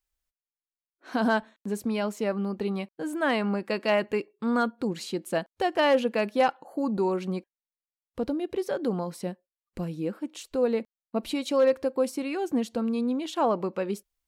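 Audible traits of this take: noise floor -96 dBFS; spectral tilt -4.5 dB/octave

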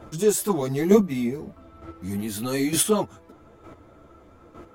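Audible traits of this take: chopped level 1.1 Hz, depth 60%, duty 10%; a shimmering, thickened sound

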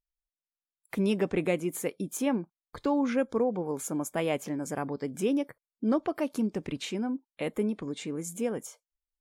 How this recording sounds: noise floor -96 dBFS; spectral tilt -5.5 dB/octave

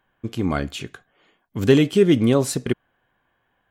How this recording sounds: noise floor -70 dBFS; spectral tilt -6.5 dB/octave

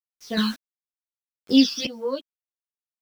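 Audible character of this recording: phasing stages 12, 1.6 Hz, lowest notch 630–4200 Hz; a quantiser's noise floor 8-bit, dither none; random-step tremolo 2.7 Hz, depth 90%; a shimmering, thickened sound

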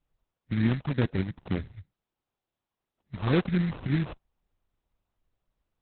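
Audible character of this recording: phasing stages 4, 2.1 Hz, lowest notch 370–3200 Hz; aliases and images of a low sample rate 2 kHz, jitter 20%; Opus

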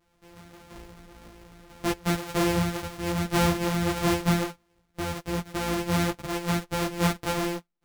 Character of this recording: a buzz of ramps at a fixed pitch in blocks of 256 samples; a shimmering, thickened sound

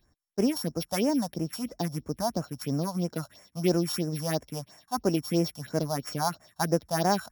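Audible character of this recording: a buzz of ramps at a fixed pitch in blocks of 8 samples; phasing stages 4, 3 Hz, lowest notch 340–3800 Hz

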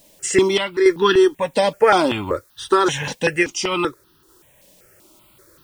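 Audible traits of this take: a quantiser's noise floor 10-bit, dither triangular; random-step tremolo; notches that jump at a steady rate 5.2 Hz 360–2200 Hz

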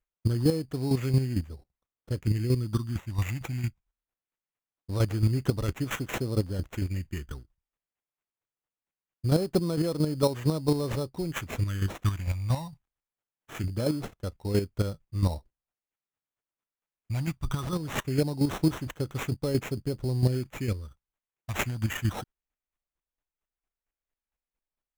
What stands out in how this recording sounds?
chopped level 4.4 Hz, depth 60%, duty 20%; phasing stages 6, 0.22 Hz, lowest notch 400–4300 Hz; aliases and images of a low sample rate 4.7 kHz, jitter 0%

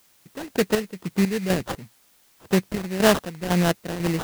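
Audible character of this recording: phasing stages 4, 1.7 Hz, lowest notch 740–4200 Hz; aliases and images of a low sample rate 2.3 kHz, jitter 20%; chopped level 2 Hz, depth 65%, duty 50%; a quantiser's noise floor 10-bit, dither triangular

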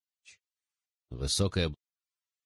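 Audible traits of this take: random-step tremolo; Vorbis

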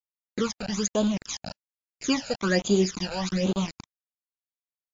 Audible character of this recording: a quantiser's noise floor 6-bit, dither none; phasing stages 12, 1.2 Hz, lowest notch 340–1900 Hz; MP3

